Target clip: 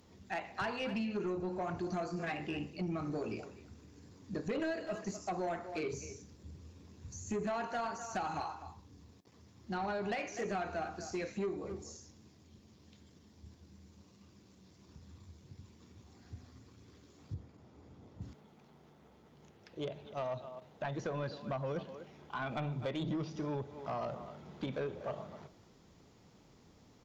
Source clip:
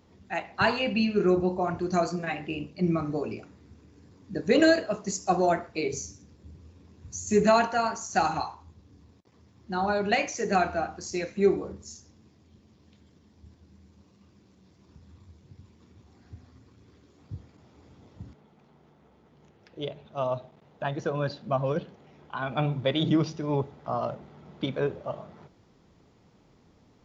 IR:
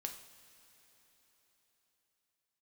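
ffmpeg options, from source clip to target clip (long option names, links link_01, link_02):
-filter_complex "[0:a]aemphasis=mode=production:type=cd,acrossover=split=2900[link_01][link_02];[link_02]acompressor=threshold=-48dB:ratio=4:attack=1:release=60[link_03];[link_01][link_03]amix=inputs=2:normalize=0,asettb=1/sr,asplit=3[link_04][link_05][link_06];[link_04]atrim=end=17.344[link_07];[link_05]atrim=start=17.34:end=18.22,asetpts=PTS-STARTPTS,afade=type=in:duration=0.004:curve=qsin,afade=type=out:start_time=0.876:duration=0.004:curve=qsin,highshelf=frequency=2100:gain=-10.5[link_08];[link_06]atrim=start=18.216[link_09];[link_07][link_08]acrossfade=duration=0.004:curve1=hsin:curve2=qsin[link_10];[link_10][link_09]acrossfade=duration=0.004:curve1=qsin:curve2=hsin,asplit=2[link_11][link_12];[link_12]adelay=250,highpass=300,lowpass=3400,asoftclip=type=hard:threshold=-18.5dB,volume=-17dB[link_13];[link_11][link_13]amix=inputs=2:normalize=0,acompressor=threshold=-30dB:ratio=4,asoftclip=type=tanh:threshold=-28dB,volume=-2dB"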